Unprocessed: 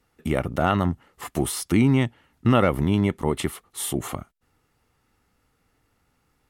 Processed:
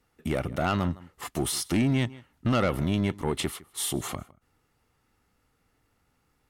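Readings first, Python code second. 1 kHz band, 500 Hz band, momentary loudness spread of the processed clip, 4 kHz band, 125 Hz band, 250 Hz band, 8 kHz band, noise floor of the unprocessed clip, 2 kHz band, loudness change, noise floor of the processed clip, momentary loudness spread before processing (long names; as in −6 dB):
−5.5 dB, −5.5 dB, 8 LU, +0.5 dB, −5.0 dB, −5.5 dB, −1.0 dB, −70 dBFS, −3.5 dB, −5.0 dB, −72 dBFS, 11 LU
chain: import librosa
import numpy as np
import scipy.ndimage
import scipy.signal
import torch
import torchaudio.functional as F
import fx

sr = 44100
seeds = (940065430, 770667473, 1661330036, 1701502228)

y = x + 10.0 ** (-23.0 / 20.0) * np.pad(x, (int(158 * sr / 1000.0), 0))[:len(x)]
y = fx.dynamic_eq(y, sr, hz=4600.0, q=0.85, threshold_db=-46.0, ratio=4.0, max_db=6)
y = 10.0 ** (-15.5 / 20.0) * np.tanh(y / 10.0 ** (-15.5 / 20.0))
y = y * librosa.db_to_amplitude(-2.5)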